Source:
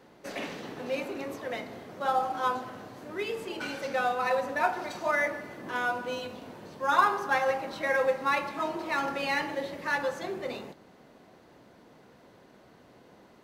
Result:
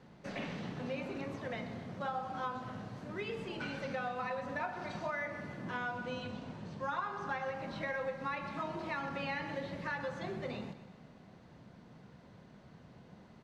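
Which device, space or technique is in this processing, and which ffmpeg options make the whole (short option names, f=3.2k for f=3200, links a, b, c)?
jukebox: -filter_complex "[0:a]asettb=1/sr,asplit=3[a][b][c];[a]atrim=end=5.774[d];[b]atrim=start=5.77:end=7.5,asetpts=PTS-STARTPTS,afade=t=in:d=0.004:c=qsin,afade=t=out:st=1.726:d=0.004:c=qsin,lowpass=f=9.4k:w=0.5412,lowpass=f=9.4k:w=1.3066[e];[c]atrim=start=7.496[f];[d][e]acrossfade=d=0.004:c1=hsin:c2=qsin[g];[g][f]acrossfade=d=0.004:c1=qsin:c2=hsin,acrossover=split=4100[h][i];[i]acompressor=threshold=-54dB:ratio=4:attack=1:release=60[j];[h][j]amix=inputs=2:normalize=0,lowpass=6.8k,lowshelf=f=240:t=q:w=1.5:g=8.5,acompressor=threshold=-31dB:ratio=5,aecho=1:1:125|250|375|500|625:0.211|0.108|0.055|0.028|0.0143,volume=-4dB"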